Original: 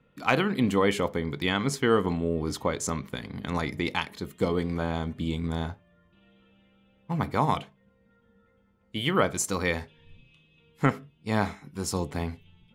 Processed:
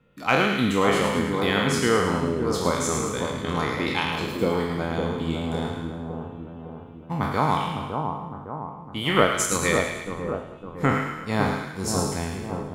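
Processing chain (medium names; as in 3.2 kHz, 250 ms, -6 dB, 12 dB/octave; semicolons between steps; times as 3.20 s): spectral sustain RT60 0.87 s; 9.09–9.74 s: transient shaper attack +6 dB, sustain -8 dB; two-band feedback delay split 1.2 kHz, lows 558 ms, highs 108 ms, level -5 dB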